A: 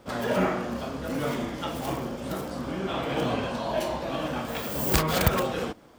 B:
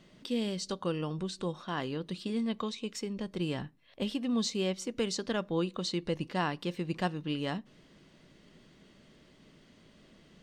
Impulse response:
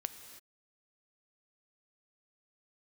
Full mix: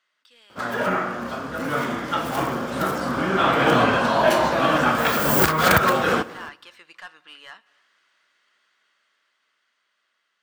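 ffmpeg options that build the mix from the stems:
-filter_complex "[0:a]alimiter=limit=0.2:level=0:latency=1:release=415,highpass=89,adelay=500,volume=0.631,asplit=2[s0][s1];[s1]volume=0.501[s2];[1:a]highpass=1100,asoftclip=type=tanh:threshold=0.0178,volume=0.2,asplit=2[s3][s4];[s4]volume=0.376[s5];[2:a]atrim=start_sample=2205[s6];[s2][s5]amix=inputs=2:normalize=0[s7];[s7][s6]afir=irnorm=-1:irlink=0[s8];[s0][s3][s8]amix=inputs=3:normalize=0,equalizer=f=1400:t=o:w=0.98:g=10.5,dynaudnorm=f=570:g=9:m=3.76"

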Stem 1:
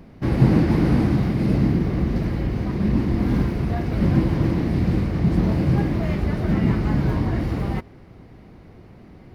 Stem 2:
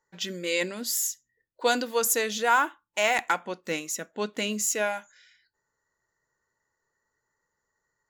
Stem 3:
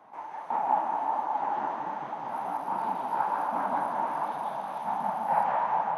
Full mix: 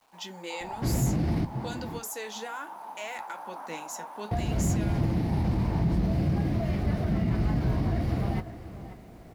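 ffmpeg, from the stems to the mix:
-filter_complex "[0:a]equalizer=f=680:t=o:w=0.26:g=9.5,adelay=600,volume=1.12,asplit=3[s0][s1][s2];[s0]atrim=end=1.45,asetpts=PTS-STARTPTS,afade=t=out:st=1.446:d=0.004:c=hsin[s3];[s1]atrim=start=1.45:end=4.31,asetpts=PTS-STARTPTS,volume=0[s4];[s2]atrim=start=4.31,asetpts=PTS-STARTPTS,afade=t=in:d=0.004:c=hsin[s5];[s3][s4][s5]concat=n=3:v=0:a=1,asplit=2[s6][s7];[s7]volume=0.15[s8];[1:a]alimiter=limit=0.112:level=0:latency=1:release=154,volume=0.668[s9];[2:a]bass=f=250:g=-10,treble=f=4000:g=10,volume=0.422[s10];[s6][s10]amix=inputs=2:normalize=0,acrusher=bits=9:mix=0:aa=0.000001,alimiter=limit=0.224:level=0:latency=1:release=22,volume=1[s11];[s8]aecho=0:1:536:1[s12];[s9][s11][s12]amix=inputs=3:normalize=0,acrossover=split=200|3000[s13][s14][s15];[s14]acompressor=threshold=0.0398:ratio=6[s16];[s13][s16][s15]amix=inputs=3:normalize=0,flanger=delay=8.7:depth=9.2:regen=-55:speed=0.6:shape=sinusoidal"

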